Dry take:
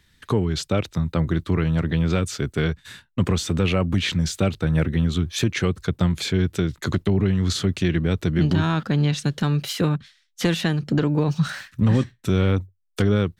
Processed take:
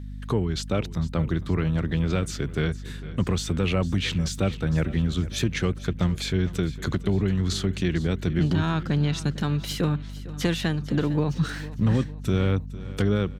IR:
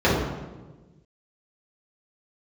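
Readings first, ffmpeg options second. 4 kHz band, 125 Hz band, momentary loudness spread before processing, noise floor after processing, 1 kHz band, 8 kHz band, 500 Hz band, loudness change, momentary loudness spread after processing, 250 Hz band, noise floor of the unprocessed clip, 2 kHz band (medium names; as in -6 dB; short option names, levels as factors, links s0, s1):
-3.5 dB, -3.0 dB, 5 LU, -36 dBFS, -3.5 dB, -3.5 dB, -3.5 dB, -3.5 dB, 4 LU, -3.5 dB, -62 dBFS, -3.5 dB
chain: -filter_complex "[0:a]aeval=exprs='val(0)+0.0282*(sin(2*PI*50*n/s)+sin(2*PI*2*50*n/s)/2+sin(2*PI*3*50*n/s)/3+sin(2*PI*4*50*n/s)/4+sin(2*PI*5*50*n/s)/5)':c=same,asplit=2[s0][s1];[s1]aecho=0:1:454|908|1362|1816:0.141|0.0678|0.0325|0.0156[s2];[s0][s2]amix=inputs=2:normalize=0,volume=0.668"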